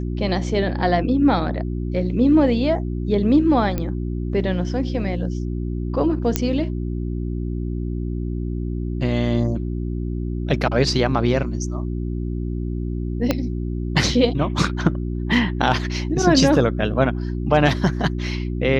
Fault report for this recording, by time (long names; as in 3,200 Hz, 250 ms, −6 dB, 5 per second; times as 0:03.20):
mains hum 60 Hz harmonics 6 −25 dBFS
0:03.78: click −11 dBFS
0:06.36: click −3 dBFS
0:13.31: click −5 dBFS